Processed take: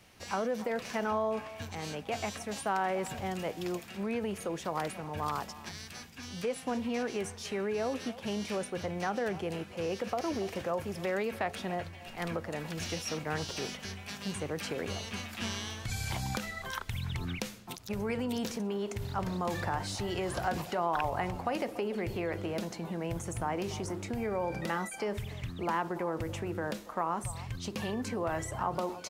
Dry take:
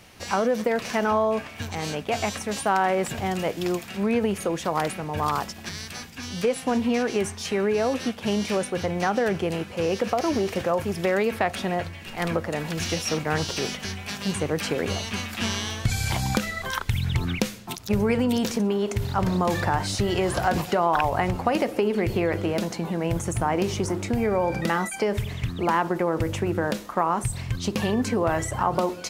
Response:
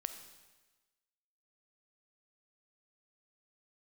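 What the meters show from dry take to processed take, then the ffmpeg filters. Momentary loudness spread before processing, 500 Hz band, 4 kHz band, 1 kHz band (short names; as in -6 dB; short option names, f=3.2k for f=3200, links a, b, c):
6 LU, -9.5 dB, -9.0 dB, -9.0 dB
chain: -filter_complex "[0:a]acrossover=split=530|1100[a][b][c];[a]alimiter=limit=-20dB:level=0:latency=1[d];[b]aecho=1:1:287:0.299[e];[d][e][c]amix=inputs=3:normalize=0,volume=-9dB"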